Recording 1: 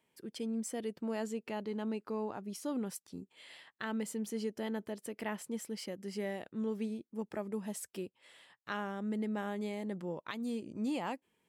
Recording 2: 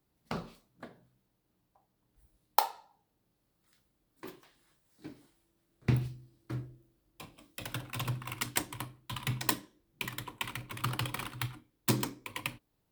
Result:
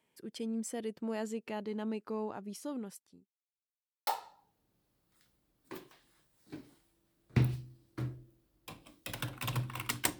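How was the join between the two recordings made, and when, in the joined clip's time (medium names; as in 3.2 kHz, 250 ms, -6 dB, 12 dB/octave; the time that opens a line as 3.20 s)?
recording 1
2.12–3.30 s: fade out equal-power
3.30–4.07 s: mute
4.07 s: go over to recording 2 from 2.59 s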